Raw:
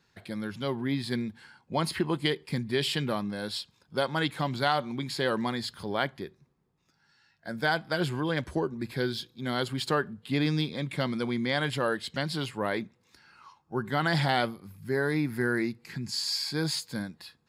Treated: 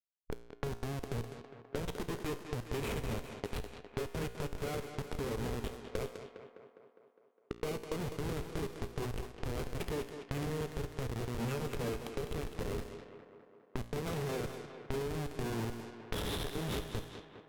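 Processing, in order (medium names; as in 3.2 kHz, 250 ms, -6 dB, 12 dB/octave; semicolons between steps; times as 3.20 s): band-stop 1.4 kHz, Q 20; Schmitt trigger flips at -27 dBFS; formant shift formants -5 st; peaking EQ 430 Hz +11.5 dB 0.29 oct; compression 12:1, threshold -42 dBFS, peak gain reduction 17.5 dB; feedback comb 58 Hz, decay 0.99 s, harmonics all, mix 60%; thinning echo 204 ms, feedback 68%, high-pass 150 Hz, level -9 dB; level-controlled noise filter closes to 1.1 kHz, open at -50 dBFS; trim +14 dB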